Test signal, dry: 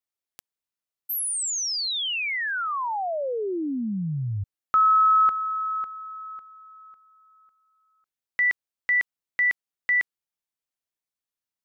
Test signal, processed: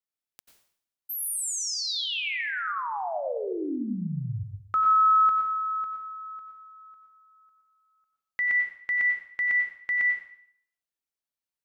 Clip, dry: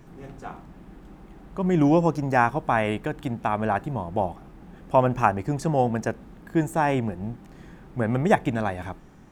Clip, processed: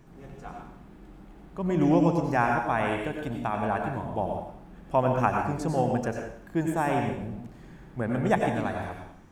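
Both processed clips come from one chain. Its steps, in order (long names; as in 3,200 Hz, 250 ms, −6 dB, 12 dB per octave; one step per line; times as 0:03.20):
dense smooth reverb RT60 0.63 s, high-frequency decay 1×, pre-delay 80 ms, DRR 2 dB
level −5 dB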